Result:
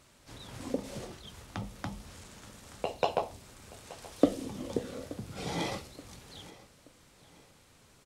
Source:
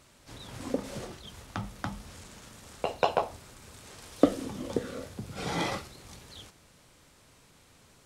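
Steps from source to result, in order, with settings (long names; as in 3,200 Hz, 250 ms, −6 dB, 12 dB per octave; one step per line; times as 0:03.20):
dynamic equaliser 1,400 Hz, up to −7 dB, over −50 dBFS, Q 1.6
repeating echo 877 ms, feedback 39%, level −19.5 dB
level −2 dB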